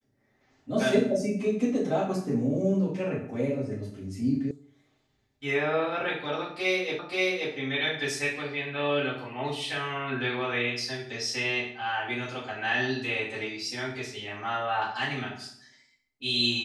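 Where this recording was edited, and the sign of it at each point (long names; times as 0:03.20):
0:04.51: cut off before it has died away
0:06.99: the same again, the last 0.53 s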